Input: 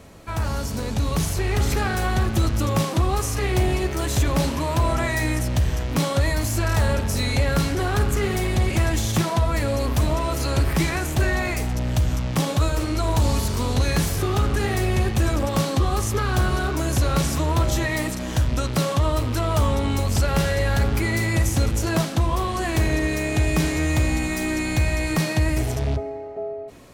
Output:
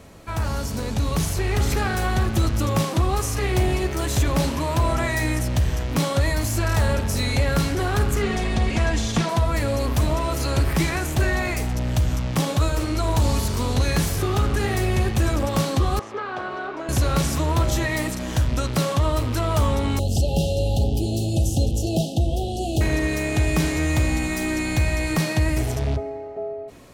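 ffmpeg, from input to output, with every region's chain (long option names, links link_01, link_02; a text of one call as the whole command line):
ffmpeg -i in.wav -filter_complex "[0:a]asettb=1/sr,asplit=3[link_01][link_02][link_03];[link_01]atrim=end=8.224[link_04];[link_02]atrim=start=8.22:end=9.29,asetpts=PTS-STARTPTS,afade=type=in:duration=0.004:curve=qsin,afade=type=out:start_time=1.066:duration=0.004:curve=qsin,lowpass=6500,aecho=1:1:4.3:0.47,atrim=end_sample=47187[link_05];[link_03]atrim=start=9.286[link_06];[link_04][link_05]acrossfade=duration=0.004:curve1=hsin:curve2=qsin[link_07];[link_07][link_06]acrossfade=duration=0.004:curve1=qsin:curve2=hsin,asettb=1/sr,asplit=3[link_08][link_09][link_10];[link_08]atrim=end=15.994[link_11];[link_09]atrim=start=15.99:end=16.89,asetpts=PTS-STARTPTS,afade=type=in:duration=0.004:curve=qsin,afade=type=out:start_time=0.896:duration=0.004:curve=qsin,highpass=450,lowpass=3600,highshelf=frequency=2200:gain=-10.5[link_12];[link_10]atrim=start=16.886[link_13];[link_11][link_12]acrossfade=duration=0.004:curve1=hsin:curve2=qsin[link_14];[link_14][link_13]acrossfade=duration=0.004:curve1=qsin:curve2=hsin,asettb=1/sr,asplit=3[link_15][link_16][link_17];[link_15]atrim=end=19.994[link_18];[link_16]atrim=start=19.99:end=22.81,asetpts=PTS-STARTPTS,afade=type=in:duration=0.004:curve=qsin,afade=type=out:start_time=2.816:duration=0.004:curve=qsin,asuperstop=centerf=1500:order=20:qfactor=0.78,highshelf=frequency=6000:gain=-4.5[link_19];[link_17]atrim=start=22.806[link_20];[link_18][link_19]acrossfade=duration=0.004:curve1=hsin:curve2=qsin[link_21];[link_21][link_20]acrossfade=duration=0.004:curve1=qsin:curve2=hsin" out.wav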